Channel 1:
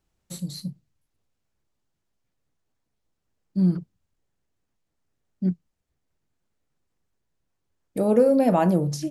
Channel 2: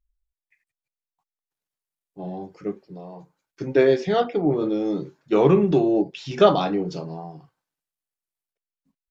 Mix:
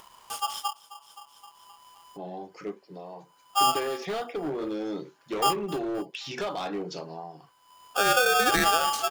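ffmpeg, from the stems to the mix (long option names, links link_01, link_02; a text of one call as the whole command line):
ffmpeg -i stem1.wav -i stem2.wav -filter_complex "[0:a]acompressor=threshold=-20dB:ratio=6,aeval=exprs='val(0)*sgn(sin(2*PI*1000*n/s))':channel_layout=same,volume=1dB,asplit=2[link_01][link_02];[link_02]volume=-19dB[link_03];[1:a]highpass=frequency=710:poles=1,acompressor=threshold=-26dB:ratio=6,asoftclip=type=hard:threshold=-28dB,volume=1dB[link_04];[link_03]aecho=0:1:262|524|786|1048|1310|1572:1|0.42|0.176|0.0741|0.0311|0.0131[link_05];[link_01][link_04][link_05]amix=inputs=3:normalize=0,acompressor=mode=upward:threshold=-36dB:ratio=2.5" out.wav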